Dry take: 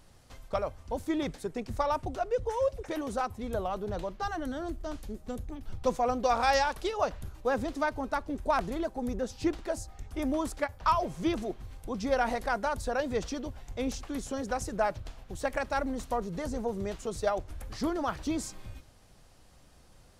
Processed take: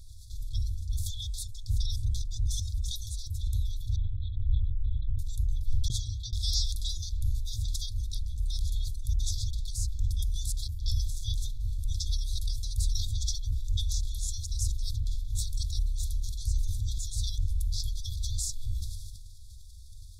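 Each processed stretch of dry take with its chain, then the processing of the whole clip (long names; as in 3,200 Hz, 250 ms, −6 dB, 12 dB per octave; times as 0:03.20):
0:03.96–0:05.19: low-pass filter 2,300 Hz + flat-topped bell 980 Hz −8.5 dB + linear-prediction vocoder at 8 kHz whisper
0:05.88–0:06.33: formant filter u + downward compressor 4 to 1, threshold −44 dBFS
whole clip: brick-wall band-stop 110–3,300 Hz; low-shelf EQ 130 Hz +8 dB; level that may fall only so fast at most 31 dB per second; level +5 dB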